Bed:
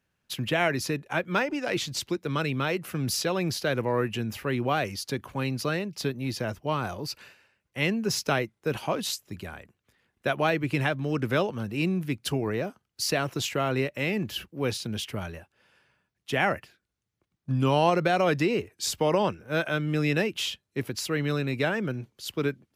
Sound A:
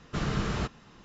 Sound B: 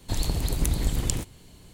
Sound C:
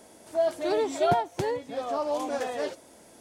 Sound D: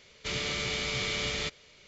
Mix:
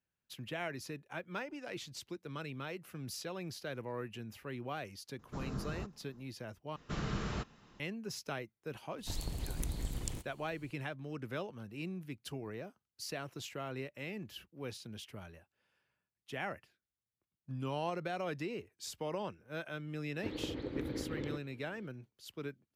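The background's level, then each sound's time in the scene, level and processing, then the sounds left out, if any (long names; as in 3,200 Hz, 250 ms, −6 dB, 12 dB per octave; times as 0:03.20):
bed −15 dB
0:05.19: mix in A −10.5 dB + parametric band 2,700 Hz −14 dB 1.4 octaves
0:06.76: overwrite with A −7.5 dB
0:08.98: mix in B −13 dB
0:20.14: mix in B −8 dB + loudspeaker in its box 150–3,000 Hz, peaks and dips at 160 Hz −10 dB, 310 Hz +9 dB, 490 Hz +9 dB, 700 Hz −8 dB, 1,000 Hz −6 dB, 2,700 Hz −8 dB
not used: C, D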